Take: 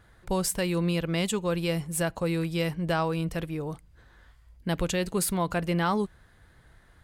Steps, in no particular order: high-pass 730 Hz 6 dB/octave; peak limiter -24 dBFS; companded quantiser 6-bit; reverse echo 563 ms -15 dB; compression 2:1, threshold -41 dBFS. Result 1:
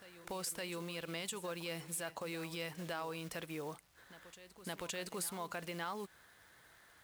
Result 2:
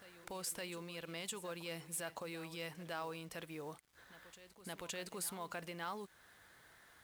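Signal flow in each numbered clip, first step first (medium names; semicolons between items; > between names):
peak limiter > companded quantiser > high-pass > compression > reverse echo; peak limiter > compression > high-pass > companded quantiser > reverse echo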